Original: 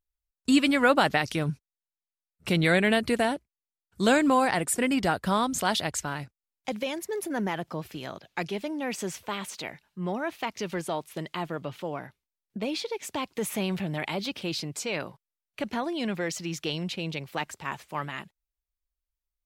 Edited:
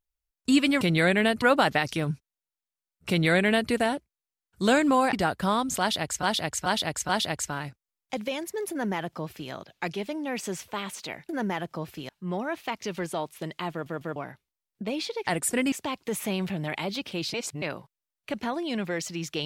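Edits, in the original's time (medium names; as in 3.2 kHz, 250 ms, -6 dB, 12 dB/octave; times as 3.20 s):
2.48–3.09 s: copy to 0.81 s
4.52–4.97 s: move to 13.02 s
5.64–6.07 s: loop, 4 plays
7.26–8.06 s: copy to 9.84 s
11.46 s: stutter in place 0.15 s, 3 plays
14.64–14.92 s: reverse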